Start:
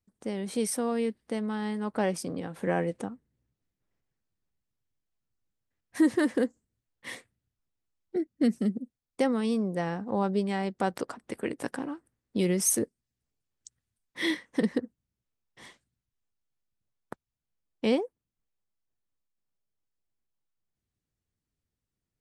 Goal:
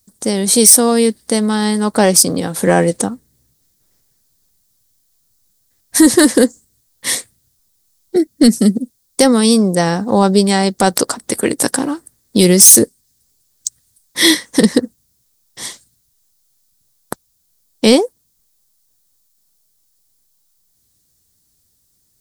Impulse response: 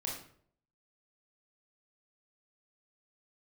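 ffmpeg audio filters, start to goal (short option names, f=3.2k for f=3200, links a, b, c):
-af "aexciter=amount=2.7:drive=9.2:freq=3.8k,apsyclip=17.5dB,volume=-1.5dB"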